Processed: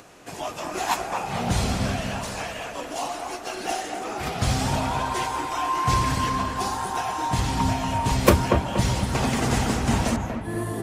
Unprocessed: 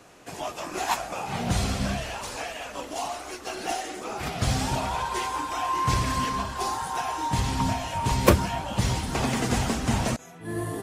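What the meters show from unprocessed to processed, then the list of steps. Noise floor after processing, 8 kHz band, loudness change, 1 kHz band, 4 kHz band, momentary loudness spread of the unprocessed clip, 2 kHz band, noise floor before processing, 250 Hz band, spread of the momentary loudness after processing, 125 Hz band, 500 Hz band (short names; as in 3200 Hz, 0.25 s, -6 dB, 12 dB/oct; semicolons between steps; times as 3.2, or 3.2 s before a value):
-36 dBFS, +1.5 dB, +2.5 dB, +2.5 dB, +1.5 dB, 9 LU, +2.5 dB, -43 dBFS, +3.0 dB, 9 LU, +2.5 dB, +3.0 dB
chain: on a send: dark delay 0.237 s, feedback 38%, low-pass 2000 Hz, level -5 dB; on the sum: upward compressor, threshold -47 dBFS; gain +1.5 dB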